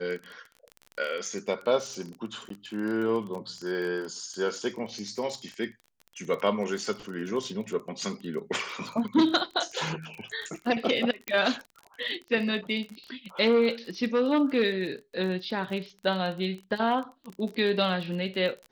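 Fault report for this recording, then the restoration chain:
crackle 28/s -34 dBFS
2.49–2.5 gap 13 ms
11.28 pop -13 dBFS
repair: de-click; interpolate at 2.49, 13 ms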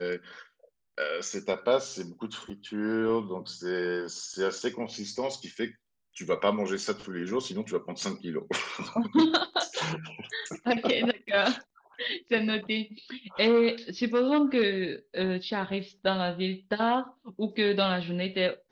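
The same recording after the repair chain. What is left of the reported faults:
11.28 pop

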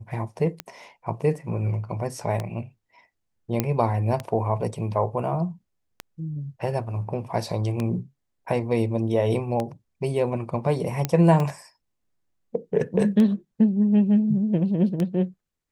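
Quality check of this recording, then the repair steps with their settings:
tick 33 1/3 rpm -14 dBFS
3.6 pop -8 dBFS
11.05 pop -9 dBFS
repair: de-click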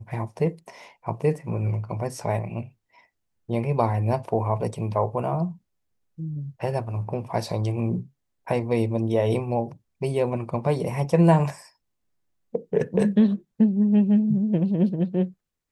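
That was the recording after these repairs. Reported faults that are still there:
none

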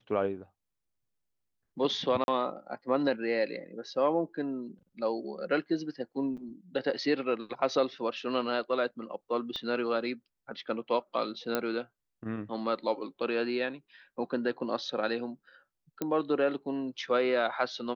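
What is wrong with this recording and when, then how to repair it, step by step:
2.24–2.28 gap 41 ms
6.37–6.38 gap 6.5 ms
9.56 pop -24 dBFS
11.55 pop -14 dBFS
16.02 pop -18 dBFS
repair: de-click; interpolate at 2.24, 41 ms; interpolate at 6.37, 6.5 ms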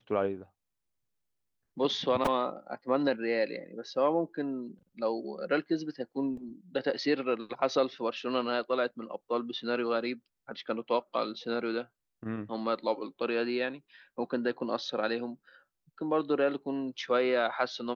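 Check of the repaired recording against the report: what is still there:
9.56 pop
16.02 pop

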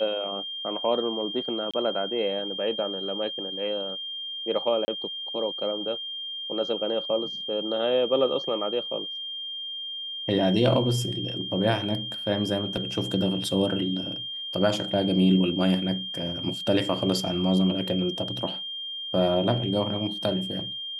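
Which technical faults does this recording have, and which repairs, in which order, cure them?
tone 3200 Hz -32 dBFS
1.71–1.74 gap 26 ms
4.85–4.88 gap 30 ms
12.77 gap 3 ms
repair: notch 3200 Hz, Q 30; interpolate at 1.71, 26 ms; interpolate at 4.85, 30 ms; interpolate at 12.77, 3 ms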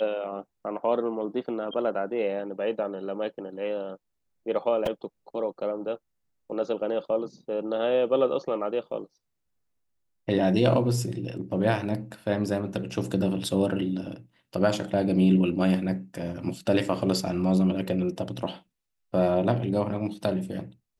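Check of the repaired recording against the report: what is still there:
none

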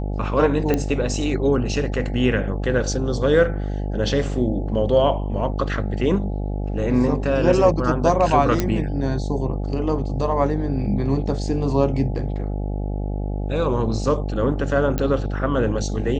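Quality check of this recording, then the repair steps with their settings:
buzz 50 Hz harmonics 17 -25 dBFS
0.74 pop -8 dBFS
8.6 pop -7 dBFS
14.98 pop -10 dBFS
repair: de-click; de-hum 50 Hz, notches 17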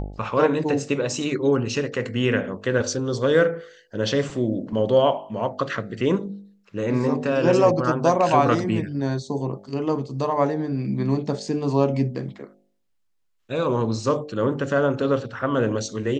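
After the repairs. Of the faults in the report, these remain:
none

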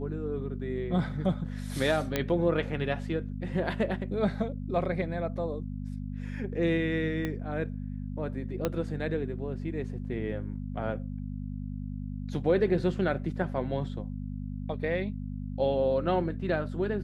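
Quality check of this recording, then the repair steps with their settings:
hum 50 Hz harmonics 5 -36 dBFS
2.16 pop -12 dBFS
7.25 pop -19 dBFS
8.65 pop -14 dBFS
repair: de-click; de-hum 50 Hz, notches 5

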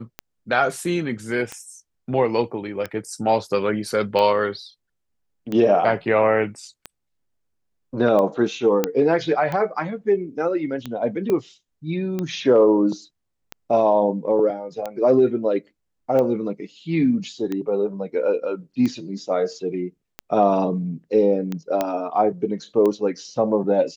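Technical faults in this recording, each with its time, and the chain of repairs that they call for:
tick 45 rpm -14 dBFS
8.84 pop -5 dBFS
11.3 pop -13 dBFS
21.81 pop -8 dBFS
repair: de-click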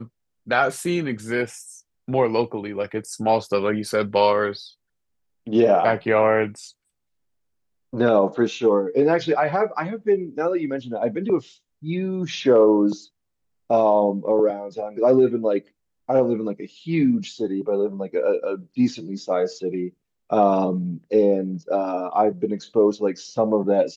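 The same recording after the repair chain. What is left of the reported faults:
none

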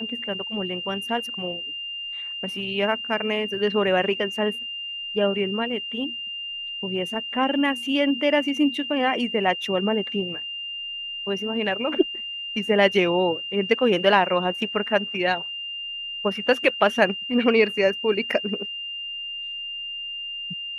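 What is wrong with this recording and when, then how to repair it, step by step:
tone 2800 Hz -30 dBFS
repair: notch 2800 Hz, Q 30

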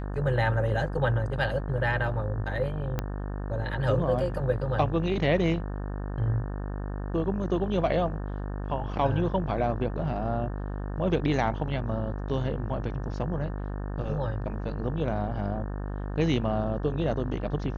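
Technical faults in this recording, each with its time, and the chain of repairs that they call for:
buzz 50 Hz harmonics 36 -33 dBFS
2.99 pop -15 dBFS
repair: de-click; de-hum 50 Hz, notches 36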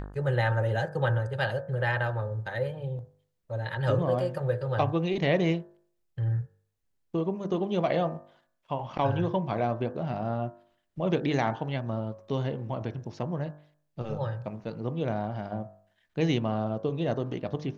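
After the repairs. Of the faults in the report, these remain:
2.99 pop

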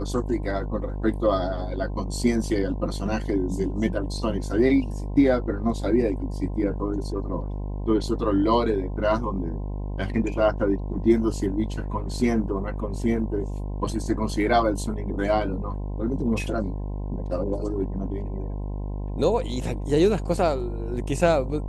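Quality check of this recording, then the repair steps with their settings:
buzz 50 Hz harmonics 21 -30 dBFS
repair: de-hum 50 Hz, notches 21

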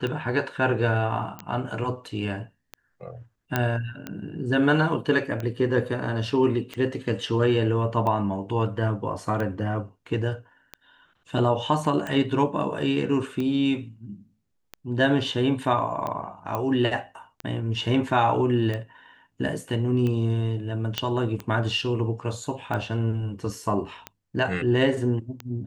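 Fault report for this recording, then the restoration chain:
tick 45 rpm -18 dBFS
1.39 pop -21 dBFS
3.56 pop -9 dBFS
16.55 pop -15 dBFS
20.98 pop -10 dBFS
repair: de-click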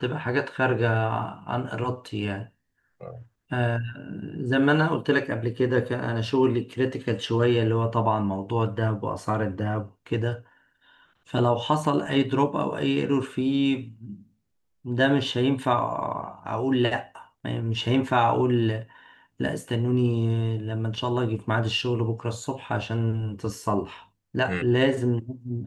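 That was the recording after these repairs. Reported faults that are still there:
none

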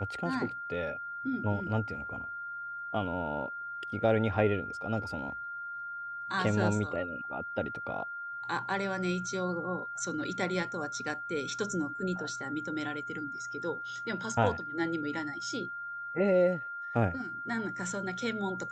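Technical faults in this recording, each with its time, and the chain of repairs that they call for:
tone 1400 Hz -37 dBFS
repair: notch 1400 Hz, Q 30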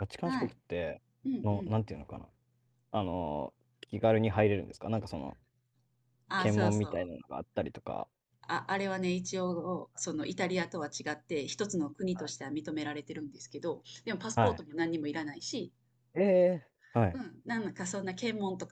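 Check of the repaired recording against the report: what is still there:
none

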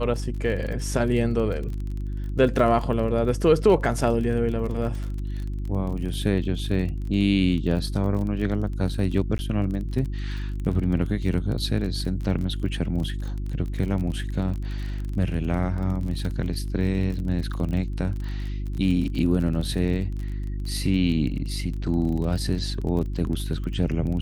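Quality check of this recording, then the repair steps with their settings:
crackle 30/s -31 dBFS
hum 50 Hz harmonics 7 -29 dBFS
9.38–9.39 gap 10 ms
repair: de-click; de-hum 50 Hz, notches 7; interpolate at 9.38, 10 ms

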